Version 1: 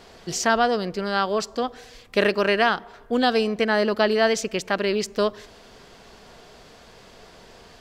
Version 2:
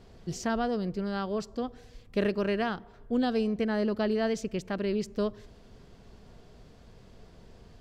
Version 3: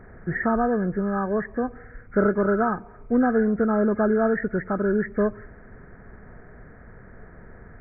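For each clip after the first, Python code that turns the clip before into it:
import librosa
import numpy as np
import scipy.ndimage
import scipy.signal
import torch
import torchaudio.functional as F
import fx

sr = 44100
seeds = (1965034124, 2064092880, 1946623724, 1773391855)

y1 = fx.curve_eq(x, sr, hz=(110.0, 780.0, 1700.0), db=(0, -15, -17))
y1 = y1 * librosa.db_to_amplitude(3.0)
y2 = fx.freq_compress(y1, sr, knee_hz=1200.0, ratio=4.0)
y2 = y2 * librosa.db_to_amplitude(7.0)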